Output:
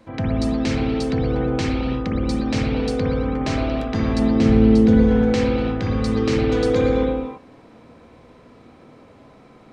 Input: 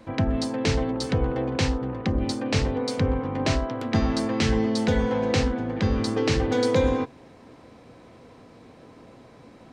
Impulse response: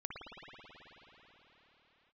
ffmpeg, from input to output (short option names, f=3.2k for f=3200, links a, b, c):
-filter_complex "[0:a]asettb=1/sr,asplit=3[a][b][c];[a]atrim=end=4.194[d];[b]atrim=start=4.19:end=5.03,asetpts=PTS-STARTPTS,afade=t=in:d=0.004:c=qsin,afade=t=out:st=0.836:d=0.004:c=qsin,tiltshelf=f=810:g=5[e];[c]atrim=start=5.026[f];[d][e]acrossfade=d=0.004:c1=hsin:c2=qsin[g];[g][f]acrossfade=d=0.004:c1=qsin:c2=hsin[h];[1:a]atrim=start_sample=2205,afade=t=out:st=0.39:d=0.01,atrim=end_sample=17640[i];[h][i]afir=irnorm=-1:irlink=0,volume=2.5dB"